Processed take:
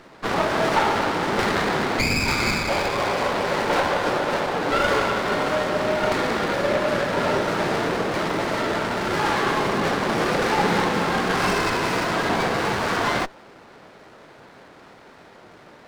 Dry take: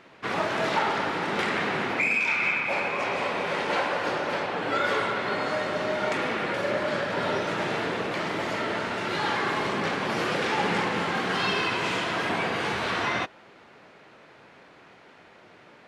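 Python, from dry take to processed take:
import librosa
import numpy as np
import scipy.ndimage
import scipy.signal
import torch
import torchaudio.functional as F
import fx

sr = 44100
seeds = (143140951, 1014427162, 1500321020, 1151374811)

y = fx.running_max(x, sr, window=9)
y = F.gain(torch.from_numpy(y), 6.0).numpy()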